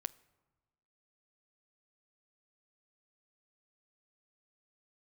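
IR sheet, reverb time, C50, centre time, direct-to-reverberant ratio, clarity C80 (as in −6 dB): 1.3 s, 21.5 dB, 2 ms, 17.0 dB, 23.5 dB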